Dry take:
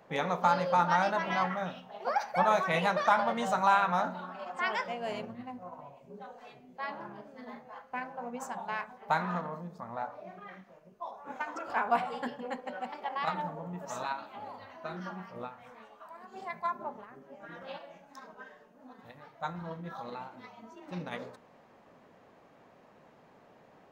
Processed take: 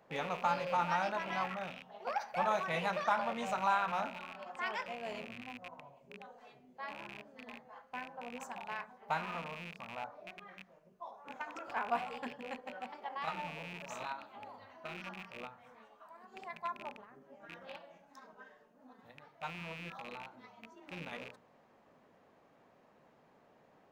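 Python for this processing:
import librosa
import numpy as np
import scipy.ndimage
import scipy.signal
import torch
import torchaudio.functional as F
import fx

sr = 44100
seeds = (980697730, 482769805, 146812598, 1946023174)

y = fx.rattle_buzz(x, sr, strikes_db=-51.0, level_db=-29.0)
y = fx.hum_notches(y, sr, base_hz=60, count=3)
y = y * librosa.db_to_amplitude(-6.5)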